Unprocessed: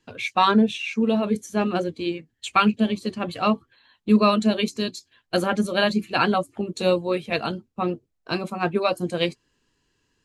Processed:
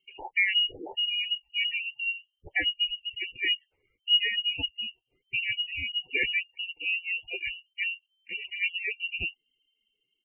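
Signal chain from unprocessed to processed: vibrato 6.3 Hz 5.5 cents; static phaser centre 450 Hz, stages 6; frequency inversion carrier 3.1 kHz; spectral gate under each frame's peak -15 dB strong; comb 2.2 ms, depth 48%; random flutter of the level, depth 50%; trim -1.5 dB

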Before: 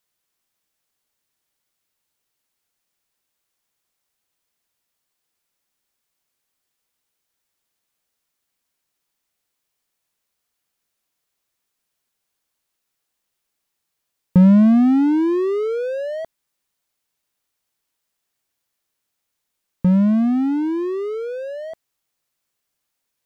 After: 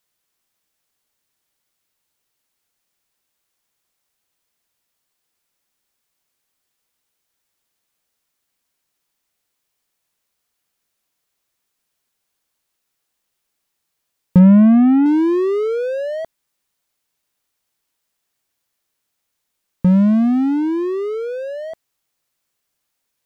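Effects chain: 14.39–15.06 s: low-pass 2.8 kHz 24 dB/octave; trim +2.5 dB

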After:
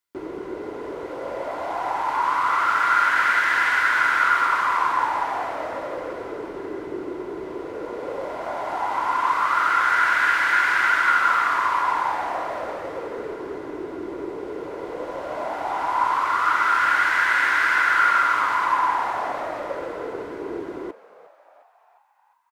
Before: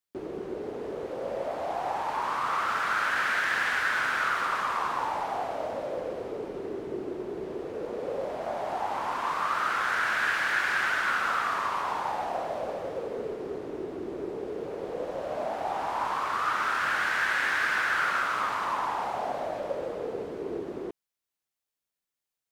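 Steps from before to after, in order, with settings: peaking EQ 240 Hz -9.5 dB 1.4 oct; small resonant body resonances 300/1000/1400/2000 Hz, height 11 dB, ringing for 30 ms; on a send: frequency-shifting echo 355 ms, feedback 60%, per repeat +120 Hz, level -18.5 dB; on the sum: trim +3 dB

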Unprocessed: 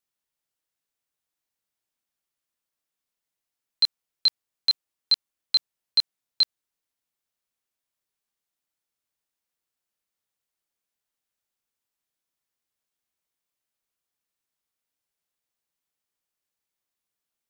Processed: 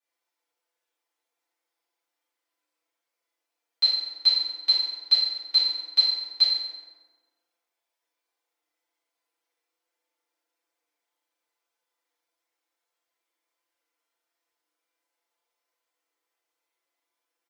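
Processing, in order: high-pass 380 Hz 24 dB/octave; treble shelf 4.5 kHz -10 dB; comb 5.9 ms, depth 99%; compression 1.5:1, threshold -28 dBFS, peak gain reduction 4 dB; flange 0.77 Hz, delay 7 ms, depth 5.1 ms, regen +52%; FDN reverb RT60 1.4 s, low-frequency decay 1.3×, high-frequency decay 0.6×, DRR -9.5 dB

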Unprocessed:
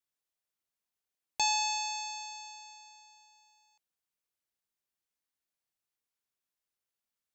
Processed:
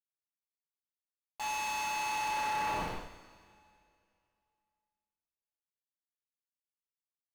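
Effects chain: Schmitt trigger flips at -46.5 dBFS; two-slope reverb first 0.63 s, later 2.5 s, from -21 dB, DRR -7.5 dB; overdrive pedal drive 13 dB, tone 2.2 kHz, clips at -26.5 dBFS

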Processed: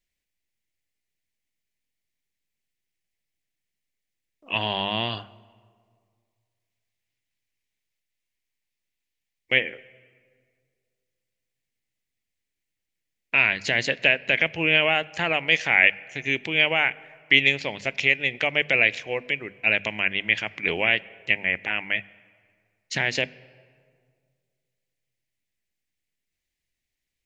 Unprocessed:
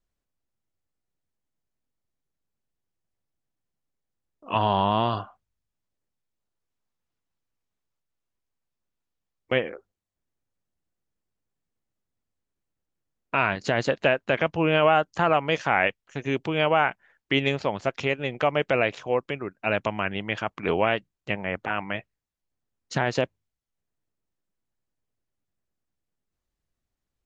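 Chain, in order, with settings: resonant high shelf 1.6 kHz +8.5 dB, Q 3; hum notches 50/100/150/200/250 Hz; on a send: reverberation RT60 2.0 s, pre-delay 3 ms, DRR 20.5 dB; on the sum: trim -4 dB

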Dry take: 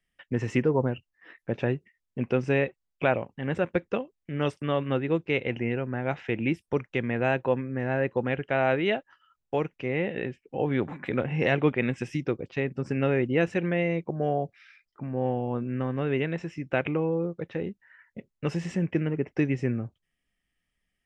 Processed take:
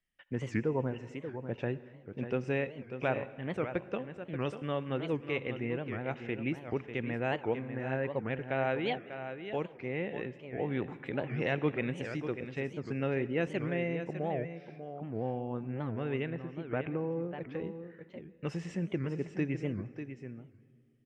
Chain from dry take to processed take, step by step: 16.30–17.11 s: Bessel low-pass 1.6 kHz, order 2; delay 594 ms -9.5 dB; on a send at -16.5 dB: reverberation RT60 2.1 s, pre-delay 61 ms; on the sum: warped record 78 rpm, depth 250 cents; trim -7.5 dB

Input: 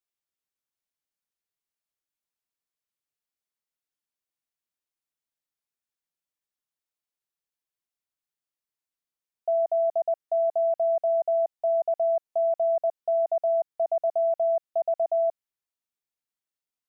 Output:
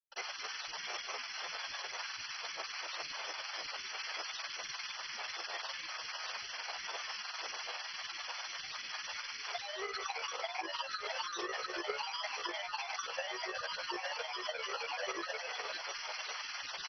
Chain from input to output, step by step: one-bit comparator; high-pass 860 Hz 24 dB/octave; frequency-shifting echo 209 ms, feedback 49%, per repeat +100 Hz, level -3.5 dB; reverberation, pre-delay 76 ms; granulator, grains 20 per s, pitch spread up and down by 12 st; transient shaper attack +5 dB, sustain -9 dB; trim +17.5 dB; MP2 32 kbps 32 kHz

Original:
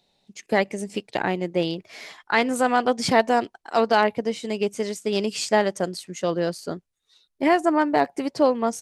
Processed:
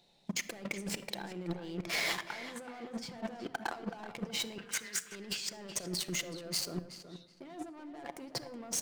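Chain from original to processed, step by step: dynamic bell 9.5 kHz, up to -7 dB, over -47 dBFS, Q 0.8; waveshaping leveller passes 3; compressor with a negative ratio -33 dBFS, ratio -1; 4.58–5.12 s: resonant high-pass 1.6 kHz, resonance Q 8.2; saturation -16.5 dBFS, distortion -11 dB; tape echo 374 ms, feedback 27%, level -9 dB, low-pass 3.4 kHz; simulated room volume 2900 m³, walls furnished, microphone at 0.8 m; trim -8.5 dB

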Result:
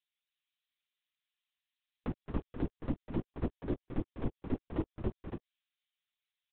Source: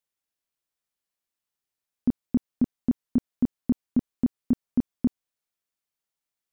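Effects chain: expander on every frequency bin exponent 1.5; high-pass 360 Hz 24 dB/octave; bass shelf 470 Hz -12 dB; peak limiter -35 dBFS, peak gain reduction 3.5 dB; doubling 16 ms -8 dB; loudspeakers at several distances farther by 73 m -9 dB, 98 m -6 dB; LPC vocoder at 8 kHz whisper; tape noise reduction on one side only encoder only; trim +9.5 dB

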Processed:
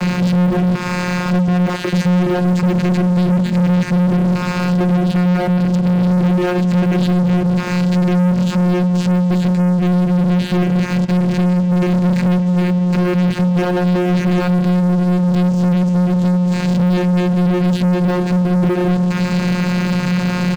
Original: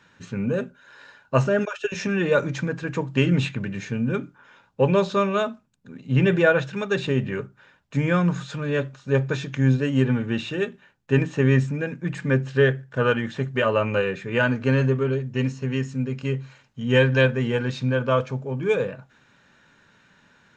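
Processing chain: jump at every zero crossing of -21.5 dBFS; compression, threshold -21 dBFS, peak gain reduction 9.5 dB; peaking EQ 190 Hz +7 dB 0.25 oct; band-stop 410 Hz, Q 12; vocoder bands 8, saw 179 Hz; delay 234 ms -23.5 dB; on a send at -17.5 dB: reverberation RT60 3.5 s, pre-delay 97 ms; on the sum: waveshaping leveller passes 5; transient shaper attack 0 dB, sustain -6 dB; bass shelf 290 Hz +4.5 dB; trim -2.5 dB

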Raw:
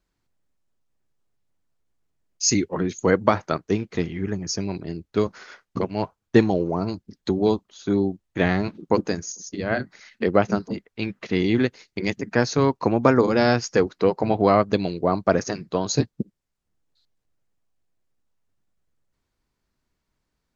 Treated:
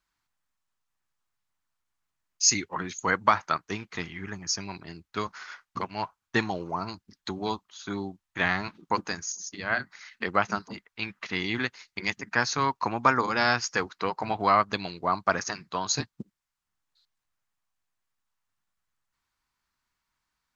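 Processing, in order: resonant low shelf 720 Hz -11 dB, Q 1.5

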